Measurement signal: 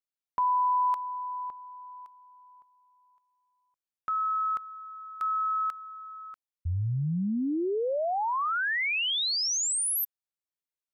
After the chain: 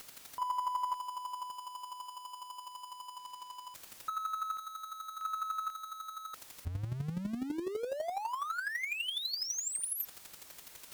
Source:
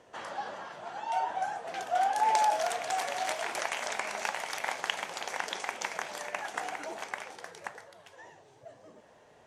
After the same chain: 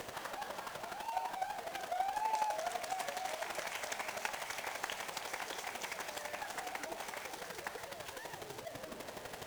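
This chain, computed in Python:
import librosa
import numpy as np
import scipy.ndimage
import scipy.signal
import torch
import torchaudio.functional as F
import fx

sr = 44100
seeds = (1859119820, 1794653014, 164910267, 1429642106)

y = x + 0.5 * 10.0 ** (-30.0 / 20.0) * np.sign(x)
y = fx.chopper(y, sr, hz=12.0, depth_pct=60, duty_pct=15)
y = fx.cheby_harmonics(y, sr, harmonics=(4,), levels_db=(-38,), full_scale_db=-13.5)
y = y * 10.0 ** (-6.0 / 20.0)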